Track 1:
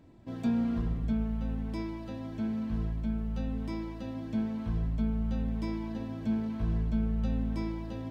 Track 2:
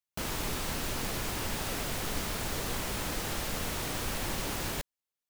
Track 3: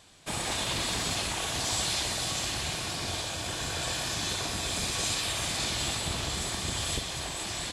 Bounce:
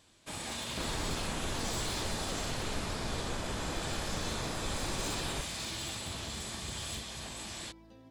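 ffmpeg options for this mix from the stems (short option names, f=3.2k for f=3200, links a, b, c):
-filter_complex "[0:a]bass=f=250:g=-7,treble=f=4k:g=6,acompressor=threshold=-35dB:ratio=6,volume=-14dB[a];[1:a]lowpass=1.7k,adelay=600,volume=-1.5dB[b];[2:a]bandreject=f=730:w=21,flanger=delay=9.1:depth=5.2:regen=-64:speed=0.68:shape=sinusoidal,aeval=exprs='0.0398*(abs(mod(val(0)/0.0398+3,4)-2)-1)':c=same,volume=-3.5dB[c];[a][b][c]amix=inputs=3:normalize=0"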